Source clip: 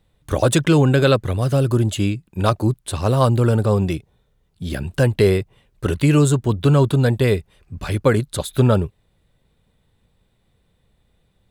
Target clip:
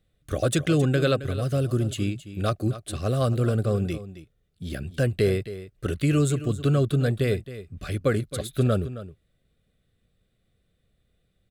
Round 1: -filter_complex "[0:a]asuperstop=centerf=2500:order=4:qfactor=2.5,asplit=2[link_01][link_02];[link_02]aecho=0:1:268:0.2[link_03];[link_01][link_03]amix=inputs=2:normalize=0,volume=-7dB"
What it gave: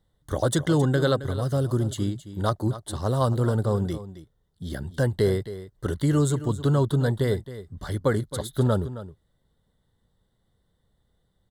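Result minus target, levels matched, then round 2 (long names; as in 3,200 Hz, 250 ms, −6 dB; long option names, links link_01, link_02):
1,000 Hz band +3.5 dB
-filter_complex "[0:a]asuperstop=centerf=920:order=4:qfactor=2.5,asplit=2[link_01][link_02];[link_02]aecho=0:1:268:0.2[link_03];[link_01][link_03]amix=inputs=2:normalize=0,volume=-7dB"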